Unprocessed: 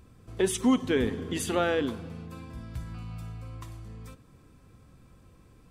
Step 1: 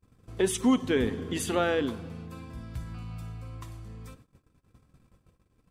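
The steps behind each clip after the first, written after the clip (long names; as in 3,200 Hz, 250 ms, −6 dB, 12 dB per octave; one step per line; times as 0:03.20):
noise gate −53 dBFS, range −29 dB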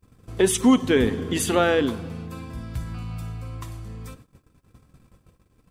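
high-shelf EQ 9,400 Hz +3.5 dB
level +6.5 dB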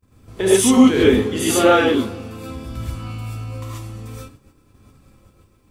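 reverb whose tail is shaped and stops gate 160 ms rising, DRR −8 dB
level −3 dB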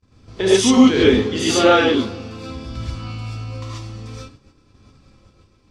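low-pass with resonance 5,100 Hz, resonance Q 2.2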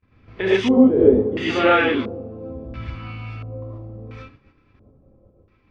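auto-filter low-pass square 0.73 Hz 560–2,200 Hz
level −4 dB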